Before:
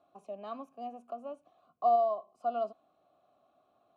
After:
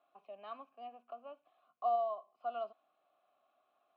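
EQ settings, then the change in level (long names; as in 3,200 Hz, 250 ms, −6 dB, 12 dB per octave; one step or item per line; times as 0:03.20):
resonant band-pass 3,100 Hz, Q 1
high-frequency loss of the air 430 metres
+7.5 dB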